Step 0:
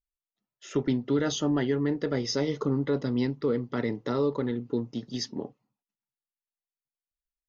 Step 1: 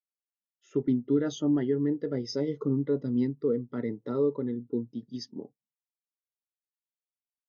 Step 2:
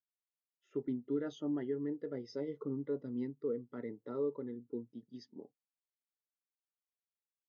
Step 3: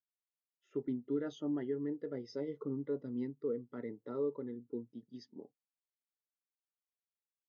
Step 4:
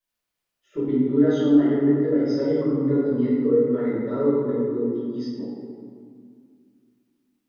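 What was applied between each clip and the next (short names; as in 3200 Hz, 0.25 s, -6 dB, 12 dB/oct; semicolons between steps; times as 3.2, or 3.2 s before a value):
spectral expander 1.5:1
tone controls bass -7 dB, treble -12 dB; gain -8 dB
nothing audible
reverb RT60 2.1 s, pre-delay 3 ms, DRR -14 dB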